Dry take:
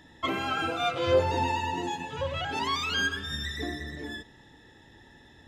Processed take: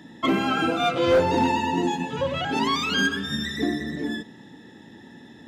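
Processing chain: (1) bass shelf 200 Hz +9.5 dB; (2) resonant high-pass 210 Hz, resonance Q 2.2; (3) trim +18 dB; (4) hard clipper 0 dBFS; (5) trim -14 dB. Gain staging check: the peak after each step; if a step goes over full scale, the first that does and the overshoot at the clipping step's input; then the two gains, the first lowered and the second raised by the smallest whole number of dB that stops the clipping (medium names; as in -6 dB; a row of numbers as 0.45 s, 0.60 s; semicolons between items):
-9.5 dBFS, -8.5 dBFS, +9.5 dBFS, 0.0 dBFS, -14.0 dBFS; step 3, 9.5 dB; step 3 +8 dB, step 5 -4 dB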